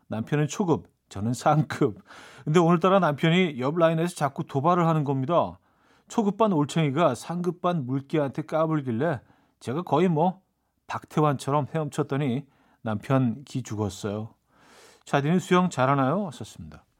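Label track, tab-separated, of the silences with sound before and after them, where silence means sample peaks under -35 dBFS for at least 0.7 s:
14.260000	15.080000	silence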